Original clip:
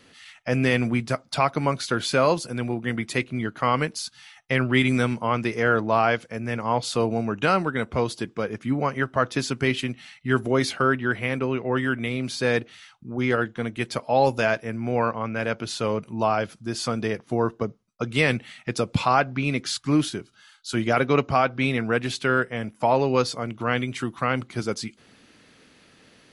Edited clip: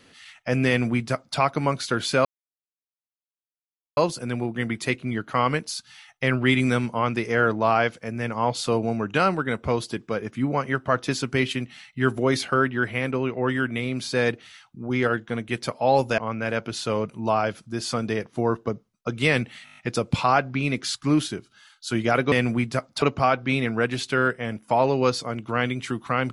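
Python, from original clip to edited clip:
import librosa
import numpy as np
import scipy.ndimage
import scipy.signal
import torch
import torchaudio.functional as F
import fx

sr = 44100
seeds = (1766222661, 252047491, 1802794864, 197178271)

y = fx.edit(x, sr, fx.duplicate(start_s=0.68, length_s=0.7, to_s=21.14),
    fx.insert_silence(at_s=2.25, length_s=1.72),
    fx.cut(start_s=14.46, length_s=0.66),
    fx.stutter(start_s=18.59, slice_s=0.02, count=7), tone=tone)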